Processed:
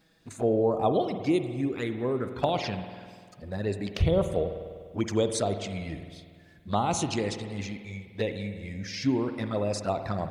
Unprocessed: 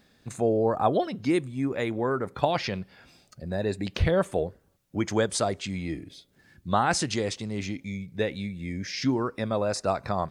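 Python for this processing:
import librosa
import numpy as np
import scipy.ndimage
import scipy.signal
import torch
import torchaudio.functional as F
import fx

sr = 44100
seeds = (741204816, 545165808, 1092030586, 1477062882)

y = fx.env_flanger(x, sr, rest_ms=6.4, full_db=-22.0)
y = fx.rev_spring(y, sr, rt60_s=1.9, pass_ms=(49,), chirp_ms=45, drr_db=8.0)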